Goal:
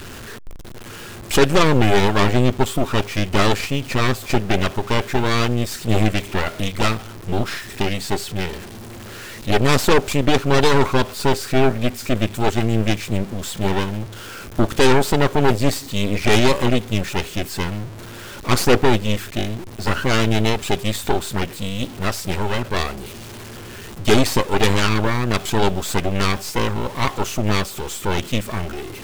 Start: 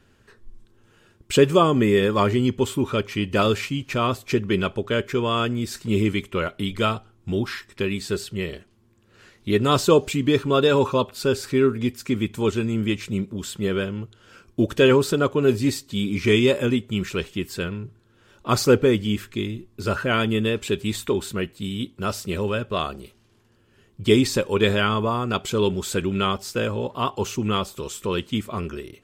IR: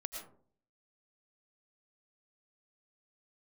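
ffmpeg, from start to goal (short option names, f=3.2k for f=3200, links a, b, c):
-af "aeval=exprs='val(0)+0.5*0.0355*sgn(val(0))':c=same,aeval=exprs='0.668*(cos(1*acos(clip(val(0)/0.668,-1,1)))-cos(1*PI/2))+0.188*(cos(8*acos(clip(val(0)/0.668,-1,1)))-cos(8*PI/2))':c=same,volume=-1dB"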